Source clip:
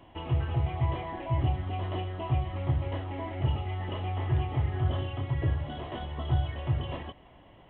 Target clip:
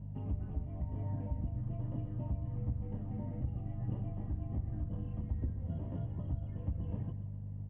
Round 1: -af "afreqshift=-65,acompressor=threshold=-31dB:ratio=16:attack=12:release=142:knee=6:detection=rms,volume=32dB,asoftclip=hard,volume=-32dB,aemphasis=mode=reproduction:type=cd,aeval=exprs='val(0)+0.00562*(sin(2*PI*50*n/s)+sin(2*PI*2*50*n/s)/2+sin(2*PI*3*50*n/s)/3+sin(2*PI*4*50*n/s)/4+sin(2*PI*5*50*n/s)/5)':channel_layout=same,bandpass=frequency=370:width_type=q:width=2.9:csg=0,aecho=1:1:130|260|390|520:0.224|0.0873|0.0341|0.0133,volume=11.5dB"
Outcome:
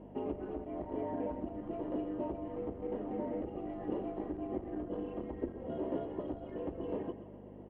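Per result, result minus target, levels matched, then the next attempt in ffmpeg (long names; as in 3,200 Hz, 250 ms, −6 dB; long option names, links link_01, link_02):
gain into a clipping stage and back: distortion +32 dB; 500 Hz band +14.5 dB
-af "afreqshift=-65,acompressor=threshold=-31dB:ratio=16:attack=12:release=142:knee=6:detection=rms,volume=24.5dB,asoftclip=hard,volume=-24.5dB,aemphasis=mode=reproduction:type=cd,aeval=exprs='val(0)+0.00562*(sin(2*PI*50*n/s)+sin(2*PI*2*50*n/s)/2+sin(2*PI*3*50*n/s)/3+sin(2*PI*4*50*n/s)/4+sin(2*PI*5*50*n/s)/5)':channel_layout=same,bandpass=frequency=370:width_type=q:width=2.9:csg=0,aecho=1:1:130|260|390|520:0.224|0.0873|0.0341|0.0133,volume=11.5dB"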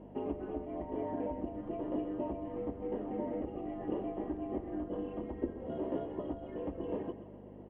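500 Hz band +14.5 dB
-af "afreqshift=-65,acompressor=threshold=-31dB:ratio=16:attack=12:release=142:knee=6:detection=rms,volume=24.5dB,asoftclip=hard,volume=-24.5dB,aemphasis=mode=reproduction:type=cd,aeval=exprs='val(0)+0.00562*(sin(2*PI*50*n/s)+sin(2*PI*2*50*n/s)/2+sin(2*PI*3*50*n/s)/3+sin(2*PI*4*50*n/s)/4+sin(2*PI*5*50*n/s)/5)':channel_layout=same,bandpass=frequency=120:width_type=q:width=2.9:csg=0,aecho=1:1:130|260|390|520:0.224|0.0873|0.0341|0.0133,volume=11.5dB"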